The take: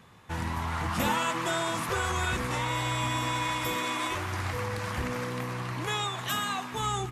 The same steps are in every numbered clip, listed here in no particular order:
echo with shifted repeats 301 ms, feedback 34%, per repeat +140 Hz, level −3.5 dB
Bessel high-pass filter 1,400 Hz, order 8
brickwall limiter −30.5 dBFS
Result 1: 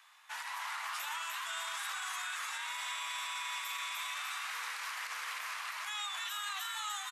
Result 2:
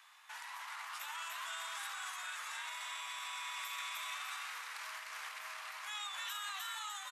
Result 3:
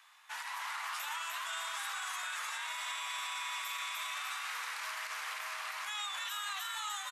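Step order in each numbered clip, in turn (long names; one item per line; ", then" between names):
Bessel high-pass filter, then echo with shifted repeats, then brickwall limiter
echo with shifted repeats, then brickwall limiter, then Bessel high-pass filter
echo with shifted repeats, then Bessel high-pass filter, then brickwall limiter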